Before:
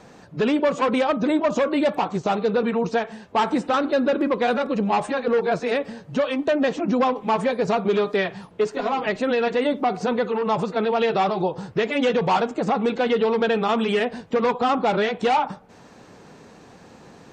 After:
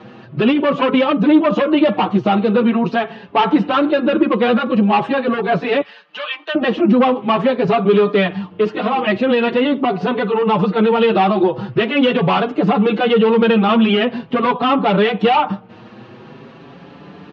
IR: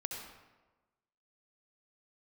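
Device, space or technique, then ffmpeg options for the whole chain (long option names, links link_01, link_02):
barber-pole flanger into a guitar amplifier: -filter_complex "[0:a]asettb=1/sr,asplit=3[link_01][link_02][link_03];[link_01]atrim=end=5.814[link_04];[link_02]atrim=start=5.81:end=6.55,asetpts=PTS-STARTPTS,afade=type=in:duration=0.004:curve=qsin,afade=type=out:start_time=0.736:duration=0.004:curve=qsin,highpass=1400[link_05];[link_03]atrim=start=6.546[link_06];[link_04][link_05]acrossfade=duration=0.004:curve1=hsin:curve2=qsin[link_07];[link_07][link_06]acrossfade=duration=0.004:curve1=qsin:curve2=hsin,asplit=2[link_08][link_09];[link_09]adelay=5.9,afreqshift=0.44[link_10];[link_08][link_10]amix=inputs=2:normalize=1,asoftclip=type=tanh:threshold=-16dB,highpass=91,equalizer=frequency=120:width_type=q:width=4:gain=8,equalizer=frequency=200:width_type=q:width=4:gain=7,equalizer=frequency=340:width_type=q:width=4:gain=6,equalizer=frequency=1200:width_type=q:width=4:gain=4,equalizer=frequency=2900:width_type=q:width=4:gain=7,lowpass=frequency=4000:width=0.5412,lowpass=frequency=4000:width=1.3066,volume=8.5dB"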